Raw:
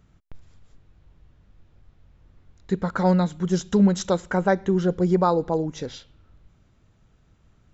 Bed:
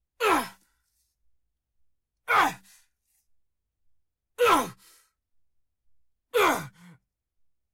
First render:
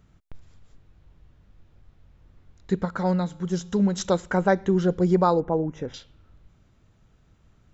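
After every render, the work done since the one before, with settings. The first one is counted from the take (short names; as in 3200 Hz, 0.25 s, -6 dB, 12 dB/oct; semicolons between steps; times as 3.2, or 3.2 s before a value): 2.85–3.98 resonator 58 Hz, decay 1.7 s, harmonics odd, mix 40%; 5.4–5.94 running mean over 10 samples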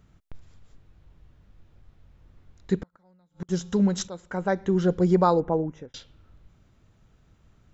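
2.81–3.49 flipped gate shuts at -21 dBFS, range -37 dB; 4.08–4.88 fade in, from -19.5 dB; 5.44–5.94 fade out equal-power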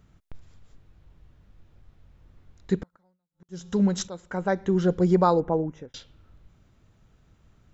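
2.81–3.88 dip -20 dB, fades 0.37 s equal-power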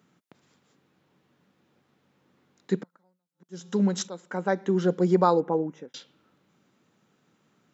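HPF 180 Hz 24 dB/oct; notch 650 Hz, Q 12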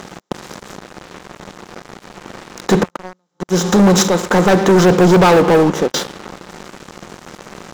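per-bin compression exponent 0.6; sample leveller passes 5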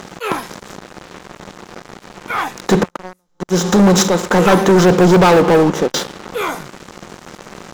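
add bed +1 dB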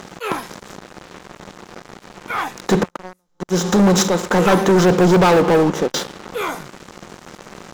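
gain -3 dB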